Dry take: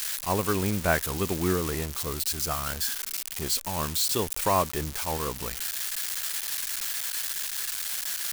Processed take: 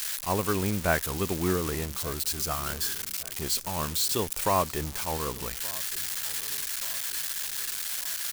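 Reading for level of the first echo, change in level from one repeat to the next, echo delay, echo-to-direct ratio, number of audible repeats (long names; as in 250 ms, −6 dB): −20.5 dB, −6.5 dB, 1,175 ms, −19.5 dB, 3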